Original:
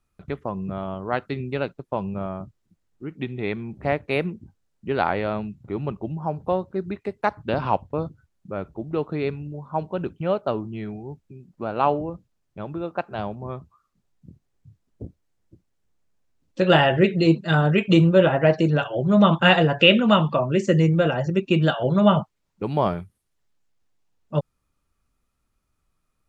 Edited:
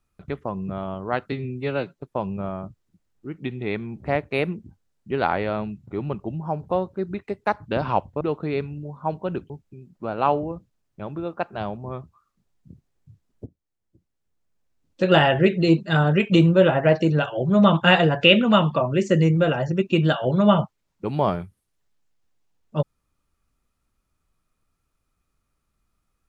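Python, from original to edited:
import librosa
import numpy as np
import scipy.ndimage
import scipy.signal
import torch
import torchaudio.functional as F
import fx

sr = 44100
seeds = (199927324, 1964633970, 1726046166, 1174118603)

y = fx.edit(x, sr, fx.stretch_span(start_s=1.32, length_s=0.46, factor=1.5),
    fx.cut(start_s=7.98, length_s=0.92),
    fx.cut(start_s=10.19, length_s=0.89),
    fx.fade_in_from(start_s=15.04, length_s=1.57, floor_db=-17.0), tone=tone)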